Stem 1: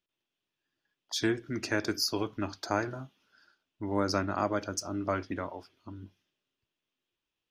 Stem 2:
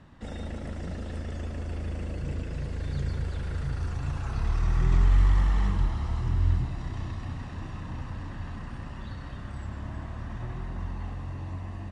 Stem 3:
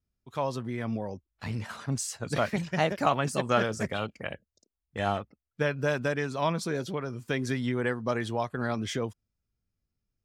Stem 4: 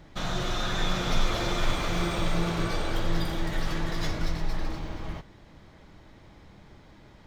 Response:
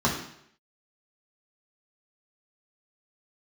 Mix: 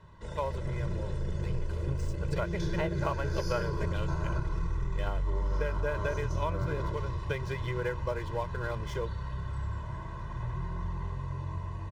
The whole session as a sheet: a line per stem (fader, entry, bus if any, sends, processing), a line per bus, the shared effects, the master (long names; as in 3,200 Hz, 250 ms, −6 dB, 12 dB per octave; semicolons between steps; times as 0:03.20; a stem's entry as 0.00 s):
−4.0 dB, 1.45 s, send −10 dB, spectrum smeared in time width 226 ms; output level in coarse steps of 20 dB; brickwall limiter −32 dBFS, peak gain reduction 6.5 dB
−6.5 dB, 0.00 s, send −17 dB, brickwall limiter −21 dBFS, peak gain reduction 9 dB
−0.5 dB, 0.00 s, no send, treble cut that deepens with the level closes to 2,200 Hz, closed at −22.5 dBFS; dead-zone distortion −44 dBFS; expander for the loud parts 1.5 to 1, over −39 dBFS
−12.5 dB, 0.40 s, send −14.5 dB, Butterworth low-pass 520 Hz 48 dB per octave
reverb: on, RT60 0.70 s, pre-delay 3 ms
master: comb filter 2 ms, depth 99%; downward compressor 4 to 1, threshold −27 dBFS, peak gain reduction 8.5 dB